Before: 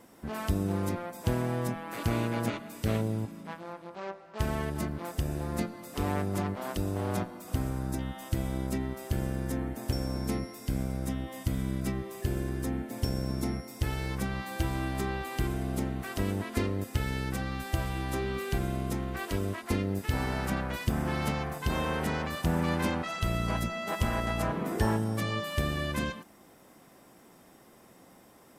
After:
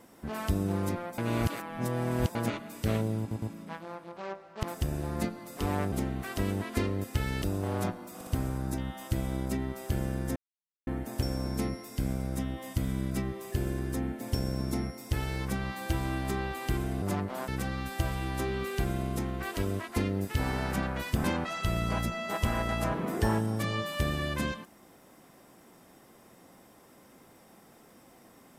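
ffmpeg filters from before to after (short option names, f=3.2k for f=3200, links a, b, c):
-filter_complex "[0:a]asplit=14[a][b][c][d][e][f][g][h][i][j][k][l][m][n];[a]atrim=end=1.182[o];[b]atrim=start=1.178:end=2.352,asetpts=PTS-STARTPTS,areverse[p];[c]atrim=start=2.348:end=3.312[q];[d]atrim=start=3.198:end=3.312[r];[e]atrim=start=3.198:end=4.412[s];[f]atrim=start=4.998:end=6.292[t];[g]atrim=start=15.718:end=17.222[u];[h]atrim=start=6.748:end=7.542[v];[i]atrim=start=7.478:end=7.542[w];[j]atrim=start=7.478:end=9.57,asetpts=PTS-STARTPTS,afade=t=out:st=2.088:d=0.004:c=hsin,apad=pad_dur=0.51[x];[k]atrim=start=9.57:end=15.722,asetpts=PTS-STARTPTS,afade=t=in:d=0.004:c=hsin[y];[l]atrim=start=6.288:end=6.752[z];[m]atrim=start=17.218:end=20.982[aa];[n]atrim=start=22.818[ab];[o][p]acrossfade=d=0.004:c1=hsin:c2=hsin[ac];[ac][q]acrossfade=d=0.004:c1=hsin:c2=hsin[ad];[ad][r]acrossfade=d=0.004:c1=hsin:c2=hsin[ae];[ae][s]acrossfade=d=0.004:c1=hsin:c2=hsin[af];[af][t]acrossfade=d=0.004:c1=hsin:c2=hsin[ag];[ag][u]acrossfade=d=0.004:c1=hsin:c2=hsin[ah];[ah][v]acrossfade=d=0.004:c1=hsin:c2=hsin[ai];[ai][w]acrossfade=d=0.004:c1=hsin:c2=hsin[aj];[x][y]concat=n=2:v=0:a=1[ak];[aj][ak]acrossfade=d=0.004:c1=hsin:c2=hsin[al];[al][z]acrossfade=d=0.004:c1=hsin:c2=hsin[am];[am][aa]acrossfade=d=0.004:c1=hsin:c2=hsin[an];[an][ab]acrossfade=d=0.004:c1=hsin:c2=hsin"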